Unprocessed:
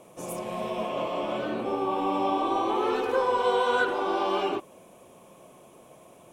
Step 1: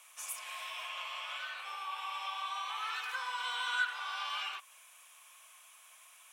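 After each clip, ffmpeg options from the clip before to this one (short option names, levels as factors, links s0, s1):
-filter_complex "[0:a]highpass=f=1400:w=0.5412,highpass=f=1400:w=1.3066,asplit=2[s0][s1];[s1]acompressor=threshold=0.00562:ratio=6,volume=1.33[s2];[s0][s2]amix=inputs=2:normalize=0,volume=0.668"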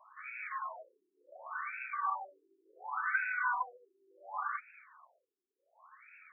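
-af "afftfilt=real='re*between(b*sr/1024,290*pow(1900/290,0.5+0.5*sin(2*PI*0.69*pts/sr))/1.41,290*pow(1900/290,0.5+0.5*sin(2*PI*0.69*pts/sr))*1.41)':imag='im*between(b*sr/1024,290*pow(1900/290,0.5+0.5*sin(2*PI*0.69*pts/sr))/1.41,290*pow(1900/290,0.5+0.5*sin(2*PI*0.69*pts/sr))*1.41)':win_size=1024:overlap=0.75,volume=2.66"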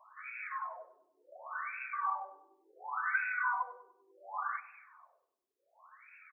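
-filter_complex "[0:a]asplit=2[s0][s1];[s1]adelay=98,lowpass=f=1300:p=1,volume=0.211,asplit=2[s2][s3];[s3]adelay=98,lowpass=f=1300:p=1,volume=0.51,asplit=2[s4][s5];[s5]adelay=98,lowpass=f=1300:p=1,volume=0.51,asplit=2[s6][s7];[s7]adelay=98,lowpass=f=1300:p=1,volume=0.51,asplit=2[s8][s9];[s9]adelay=98,lowpass=f=1300:p=1,volume=0.51[s10];[s0][s2][s4][s6][s8][s10]amix=inputs=6:normalize=0"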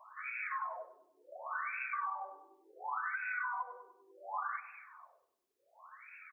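-af "alimiter=level_in=1.41:limit=0.0631:level=0:latency=1:release=336,volume=0.708,acompressor=threshold=0.0126:ratio=6,volume=1.5"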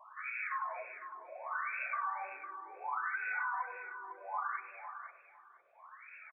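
-filter_complex "[0:a]aresample=8000,aresample=44100,asplit=2[s0][s1];[s1]aecho=0:1:505|1010|1515:0.316|0.0569|0.0102[s2];[s0][s2]amix=inputs=2:normalize=0,volume=1.12"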